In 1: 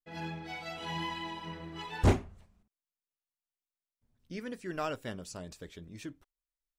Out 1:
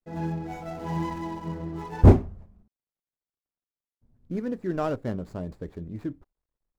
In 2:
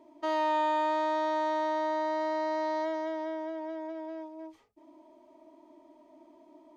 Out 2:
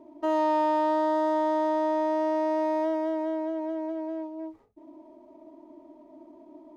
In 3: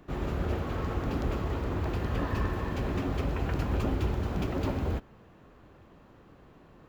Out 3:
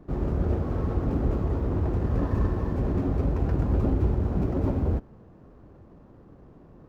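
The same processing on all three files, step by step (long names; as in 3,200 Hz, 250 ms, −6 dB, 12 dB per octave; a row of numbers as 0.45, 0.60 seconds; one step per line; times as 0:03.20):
running median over 15 samples
tilt shelving filter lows +6.5 dB
loudness normalisation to −27 LKFS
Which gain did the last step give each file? +5.5, +2.5, −0.5 decibels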